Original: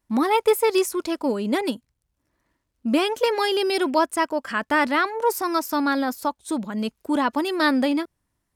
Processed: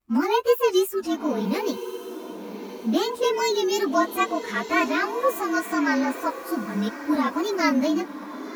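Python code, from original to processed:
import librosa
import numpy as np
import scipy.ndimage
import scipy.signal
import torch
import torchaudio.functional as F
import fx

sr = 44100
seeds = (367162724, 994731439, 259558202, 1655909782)

y = fx.partial_stretch(x, sr, pct=109)
y = fx.wow_flutter(y, sr, seeds[0], rate_hz=2.1, depth_cents=98.0)
y = fx.echo_diffused(y, sr, ms=1129, feedback_pct=44, wet_db=-12)
y = y * librosa.db_to_amplitude(1.0)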